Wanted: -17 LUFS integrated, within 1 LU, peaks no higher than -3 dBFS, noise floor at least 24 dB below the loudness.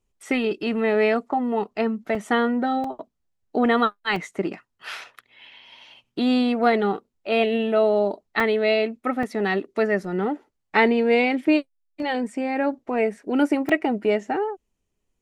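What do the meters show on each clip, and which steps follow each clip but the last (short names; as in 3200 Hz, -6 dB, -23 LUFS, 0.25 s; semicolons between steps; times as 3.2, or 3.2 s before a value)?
dropouts 6; longest dropout 3.4 ms; loudness -23.0 LUFS; peak -6.0 dBFS; loudness target -17.0 LUFS
-> interpolate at 2.15/2.84/4.16/8.4/9.23/13.69, 3.4 ms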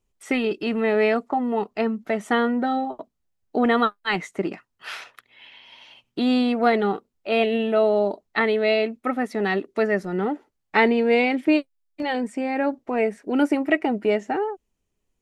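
dropouts 0; loudness -23.0 LUFS; peak -6.0 dBFS; loudness target -17.0 LUFS
-> gain +6 dB; limiter -3 dBFS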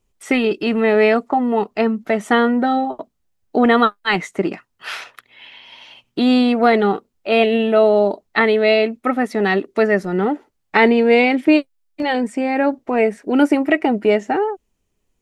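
loudness -17.0 LUFS; peak -3.0 dBFS; noise floor -70 dBFS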